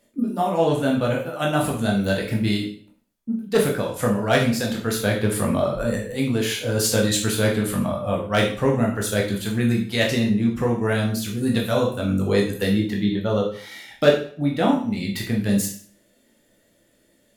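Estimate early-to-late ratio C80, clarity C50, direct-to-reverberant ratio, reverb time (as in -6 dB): 10.5 dB, 6.5 dB, -1.5 dB, 0.50 s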